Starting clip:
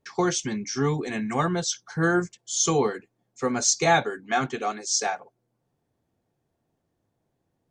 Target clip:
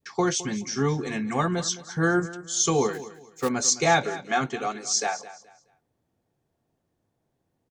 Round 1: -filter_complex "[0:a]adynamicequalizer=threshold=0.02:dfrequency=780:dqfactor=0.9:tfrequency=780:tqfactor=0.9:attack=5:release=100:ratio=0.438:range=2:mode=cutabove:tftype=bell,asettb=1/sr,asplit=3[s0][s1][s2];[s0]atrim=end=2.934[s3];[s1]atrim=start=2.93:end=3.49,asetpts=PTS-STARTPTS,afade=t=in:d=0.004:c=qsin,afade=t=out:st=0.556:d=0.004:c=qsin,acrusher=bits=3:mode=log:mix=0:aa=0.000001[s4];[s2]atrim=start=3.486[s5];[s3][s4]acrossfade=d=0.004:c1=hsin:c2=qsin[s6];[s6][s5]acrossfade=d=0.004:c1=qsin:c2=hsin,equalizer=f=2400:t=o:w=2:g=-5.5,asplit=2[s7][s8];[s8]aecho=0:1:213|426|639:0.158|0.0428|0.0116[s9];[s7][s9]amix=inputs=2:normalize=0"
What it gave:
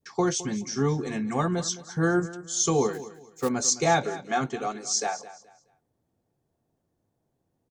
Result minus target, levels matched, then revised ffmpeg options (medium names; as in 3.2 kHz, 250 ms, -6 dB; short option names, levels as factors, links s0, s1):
2 kHz band -3.0 dB
-filter_complex "[0:a]adynamicequalizer=threshold=0.02:dfrequency=780:dqfactor=0.9:tfrequency=780:tqfactor=0.9:attack=5:release=100:ratio=0.438:range=2:mode=cutabove:tftype=bell,asettb=1/sr,asplit=3[s0][s1][s2];[s0]atrim=end=2.934[s3];[s1]atrim=start=2.93:end=3.49,asetpts=PTS-STARTPTS,afade=t=in:d=0.004:c=qsin,afade=t=out:st=0.556:d=0.004:c=qsin,acrusher=bits=3:mode=log:mix=0:aa=0.000001[s4];[s2]atrim=start=3.486[s5];[s3][s4]acrossfade=d=0.004:c1=hsin:c2=qsin[s6];[s6][s5]acrossfade=d=0.004:c1=qsin:c2=hsin,asplit=2[s7][s8];[s8]aecho=0:1:213|426|639:0.158|0.0428|0.0116[s9];[s7][s9]amix=inputs=2:normalize=0"